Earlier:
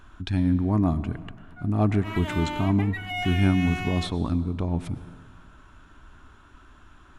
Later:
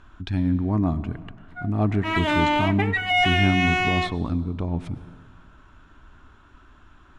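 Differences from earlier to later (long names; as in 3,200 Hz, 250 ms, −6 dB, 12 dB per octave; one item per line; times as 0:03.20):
background +11.5 dB
master: add high-frequency loss of the air 60 metres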